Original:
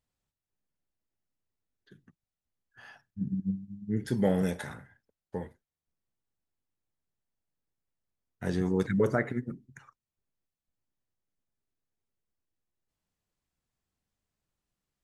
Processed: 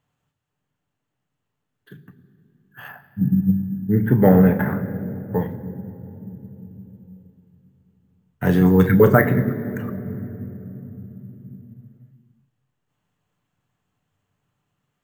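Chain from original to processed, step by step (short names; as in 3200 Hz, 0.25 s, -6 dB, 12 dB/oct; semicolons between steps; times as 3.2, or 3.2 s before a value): 2.88–5.39 LPF 2000 Hz 24 dB/oct; reverb RT60 3.5 s, pre-delay 3 ms, DRR 8.5 dB; careless resampling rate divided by 3×, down none, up hold; gain +7 dB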